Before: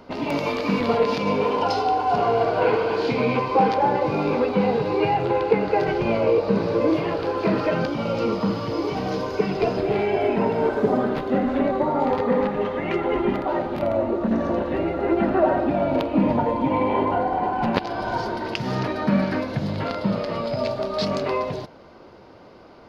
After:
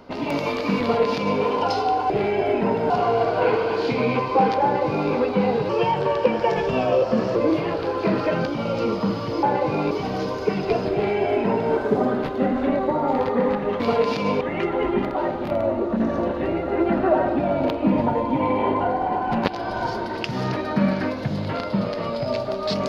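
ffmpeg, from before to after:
-filter_complex "[0:a]asplit=9[a][b][c][d][e][f][g][h][i];[a]atrim=end=2.102[j];[b]atrim=start=9.848:end=10.652[k];[c]atrim=start=2.098:end=4.894[l];[d]atrim=start=4.89:end=6.76,asetpts=PTS-STARTPTS,asetrate=49392,aresample=44100,atrim=end_sample=73631,asetpts=PTS-STARTPTS[m];[e]atrim=start=6.756:end=8.832[n];[f]atrim=start=3.828:end=4.312[o];[g]atrim=start=8.828:end=12.722[p];[h]atrim=start=0.808:end=1.422[q];[i]atrim=start=12.718[r];[j][k]acrossfade=d=0.004:c1=hsin:c2=hsin[s];[s][l]acrossfade=d=0.004:c1=hsin:c2=hsin[t];[t][m]acrossfade=d=0.004:c1=hsin:c2=hsin[u];[u][n]acrossfade=d=0.004:c1=hsin:c2=hsin[v];[v][o]acrossfade=d=0.004:c1=hsin:c2=hsin[w];[w][p]acrossfade=d=0.004:c1=hsin:c2=hsin[x];[x][q]acrossfade=d=0.004:c1=hsin:c2=hsin[y];[y][r]acrossfade=d=0.004:c1=hsin:c2=hsin"

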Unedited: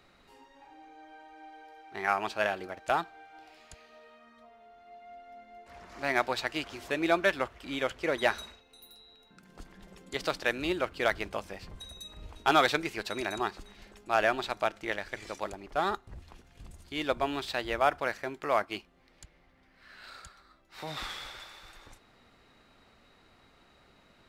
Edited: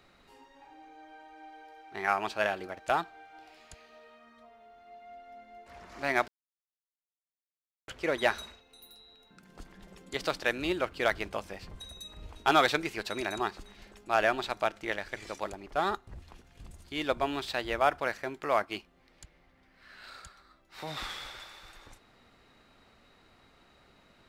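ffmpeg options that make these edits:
-filter_complex "[0:a]asplit=3[a][b][c];[a]atrim=end=6.28,asetpts=PTS-STARTPTS,afade=t=out:st=6.276:d=0.004:c=hsin[d];[b]atrim=start=6.28:end=7.88,asetpts=PTS-STARTPTS,volume=0[e];[c]atrim=start=7.88,asetpts=PTS-STARTPTS,afade=t=in:d=0.004:c=hsin[f];[d][e][f]concat=n=3:v=0:a=1"

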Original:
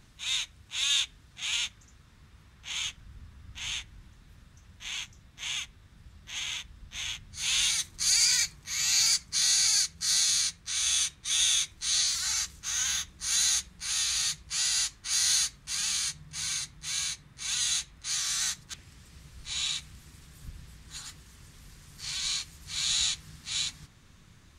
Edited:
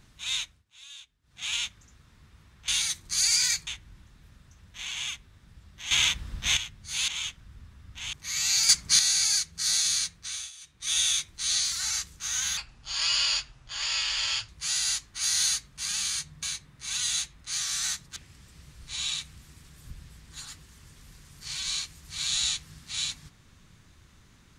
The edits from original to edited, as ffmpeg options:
-filter_complex "[0:a]asplit=17[a][b][c][d][e][f][g][h][i][j][k][l][m][n][o][p][q];[a]atrim=end=0.64,asetpts=PTS-STARTPTS,afade=t=out:st=0.42:d=0.22:silence=0.1[r];[b]atrim=start=0.64:end=1.22,asetpts=PTS-STARTPTS,volume=-20dB[s];[c]atrim=start=1.22:end=2.682,asetpts=PTS-STARTPTS,afade=t=in:d=0.22:silence=0.1[t];[d]atrim=start=7.568:end=8.562[u];[e]atrim=start=3.728:end=5.002[v];[f]atrim=start=5.428:end=6.402[w];[g]atrim=start=6.398:end=7.062,asetpts=PTS-STARTPTS,volume=12dB[x];[h]atrim=start=7.058:end=7.572[y];[i]atrim=start=2.678:end=3.732[z];[j]atrim=start=8.558:end=9.122[aa];[k]atrim=start=9.118:end=9.422,asetpts=PTS-STARTPTS,volume=7.5dB[ab];[l]atrim=start=9.418:end=10.94,asetpts=PTS-STARTPTS,afade=t=out:st=1.192:d=0.33:silence=0.0891251[ac];[m]atrim=start=10.94:end=11.03,asetpts=PTS-STARTPTS,volume=-21dB[ad];[n]atrim=start=11.03:end=13.004,asetpts=PTS-STARTPTS,afade=t=in:d=0.33:silence=0.0891251[ae];[o]atrim=start=13:end=14.38,asetpts=PTS-STARTPTS,asetrate=31752,aresample=44100[af];[p]atrim=start=14.376:end=16.322[ag];[q]atrim=start=16.998[ah];[r][s][t]concat=n=3:v=0:a=1[ai];[ai][u]acrossfade=d=0.004:c1=hsin:c2=hsin[aj];[aj][v]acrossfade=d=0.004:c1=hsin:c2=hsin[ak];[ak][w]acrossfade=d=0.004:c1=hsin:c2=hsin[al];[al][x]acrossfade=d=0.004:c1=hsin:c2=hsin[am];[am][y]acrossfade=d=0.004:c1=hsin:c2=hsin[an];[an][z]acrossfade=d=0.004:c1=hsin:c2=hsin[ao];[ao][aa]acrossfade=d=0.004:c1=hsin:c2=hsin[ap];[ap][ab]acrossfade=d=0.004:c1=hsin:c2=hsin[aq];[ac][ad][ae]concat=n=3:v=0:a=1[ar];[aq][ar]acrossfade=d=0.004:c1=hsin:c2=hsin[as];[as][af]acrossfade=d=0.004:c1=hsin:c2=hsin[at];[at][ag]acrossfade=d=0.004:c1=hsin:c2=hsin[au];[au][ah]acrossfade=d=0.004:c1=hsin:c2=hsin"

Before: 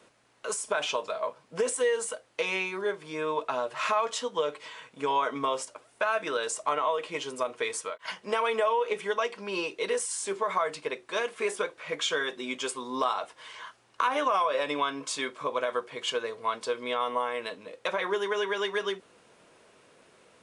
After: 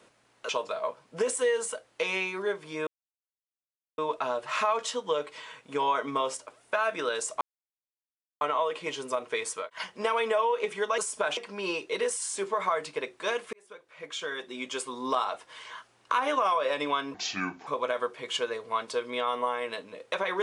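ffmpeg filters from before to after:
-filter_complex "[0:a]asplit=9[a][b][c][d][e][f][g][h][i];[a]atrim=end=0.492[j];[b]atrim=start=0.878:end=3.26,asetpts=PTS-STARTPTS,afade=t=out:st=2.378:d=0.004:c=hsin,apad=pad_dur=1.11[k];[c]atrim=start=3.26:end=6.69,asetpts=PTS-STARTPTS,afade=t=in:d=0.004:c=hsin,afade=t=out:st=3.426:d=0.004:c=hsin,apad=pad_dur=1[l];[d]atrim=start=6.69:end=9.262,asetpts=PTS-STARTPTS,afade=t=in:d=0.004:c=hsin[m];[e]atrim=start=0.488:end=0.882[n];[f]atrim=start=9.258:end=11.42,asetpts=PTS-STARTPTS,afade=t=out:st=2.158:d=0.004:c=hsin[o];[g]atrim=start=11.42:end=15.034,asetpts=PTS-STARTPTS,afade=t=in:d=1.45[p];[h]atrim=start=15.03:end=15.4,asetpts=PTS-STARTPTS,asetrate=30870,aresample=44100[q];[i]atrim=start=15.396[r];[k][l][m]concat=n=3:v=0:a=1[s];[j][s]acrossfade=d=0.004:c1=hsin:c2=hsin[t];[t][n]acrossfade=d=0.004:c1=hsin:c2=hsin[u];[o][p]concat=n=2:v=0:a=1[v];[u][v]acrossfade=d=0.004:c1=hsin:c2=hsin[w];[w][q]acrossfade=d=0.004:c1=hsin:c2=hsin[x];[x][r]acrossfade=d=0.004:c1=hsin:c2=hsin"

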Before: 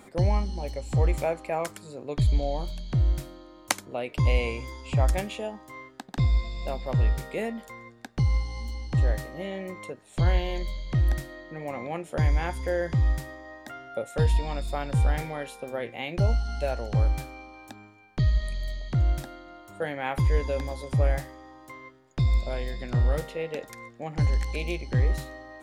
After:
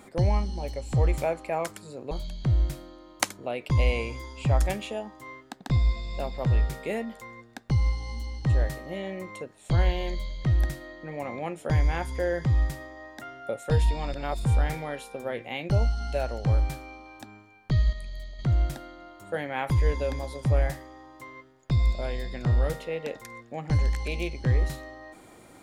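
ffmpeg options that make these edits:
-filter_complex "[0:a]asplit=6[a][b][c][d][e][f];[a]atrim=end=2.112[g];[b]atrim=start=2.588:end=14.622[h];[c]atrim=start=14.618:end=14.932,asetpts=PTS-STARTPTS,areverse[i];[d]atrim=start=14.928:end=18.412[j];[e]atrim=start=18.408:end=18.872,asetpts=PTS-STARTPTS,volume=-6dB[k];[f]atrim=start=18.868[l];[g][h]acrossfade=d=0.004:c1=hsin:c2=hsin[m];[m][i]acrossfade=d=0.004:c1=hsin:c2=hsin[n];[n][j]acrossfade=d=0.004:c1=hsin:c2=hsin[o];[o][k]acrossfade=d=0.004:c1=hsin:c2=hsin[p];[p][l]acrossfade=d=0.004:c1=hsin:c2=hsin"

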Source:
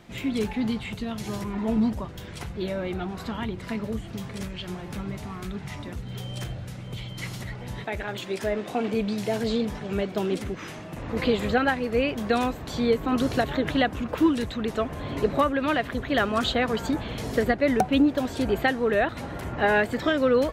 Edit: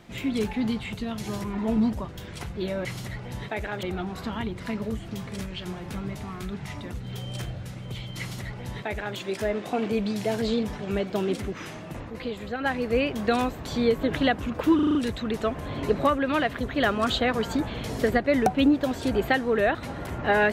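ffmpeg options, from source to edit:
-filter_complex "[0:a]asplit=11[a][b][c][d][e][f][g][h][i][j][k];[a]atrim=end=2.852[l];[b]atrim=start=7.208:end=8.192[m];[c]atrim=start=2.848:end=11.13,asetpts=PTS-STARTPTS,afade=t=out:st=8.142:d=0.14:silence=0.334965[n];[d]atrim=start=11.13:end=11.61,asetpts=PTS-STARTPTS,volume=-9.5dB[o];[e]atrim=start=11.61:end=13.052,asetpts=PTS-STARTPTS,afade=t=in:d=0.14:silence=0.334965[p];[f]atrim=start=13.568:end=14.332[q];[g]atrim=start=14.288:end=14.332[r];[h]atrim=start=14.288:end=14.332[s];[i]atrim=start=14.288:end=14.332[t];[j]atrim=start=14.288:end=14.332[u];[k]atrim=start=14.288[v];[l][m]acrossfade=d=0.004:c1=hsin:c2=hsin[w];[n][o][p]concat=n=3:v=0:a=1[x];[w][x]acrossfade=d=0.004:c1=hsin:c2=hsin[y];[y][q]acrossfade=d=0.004:c1=hsin:c2=hsin[z];[z][r]acrossfade=d=0.004:c1=hsin:c2=hsin[aa];[aa][s]acrossfade=d=0.004:c1=hsin:c2=hsin[ab];[ab][t]acrossfade=d=0.004:c1=hsin:c2=hsin[ac];[ac][u]acrossfade=d=0.004:c1=hsin:c2=hsin[ad];[ad][v]acrossfade=d=0.004:c1=hsin:c2=hsin"

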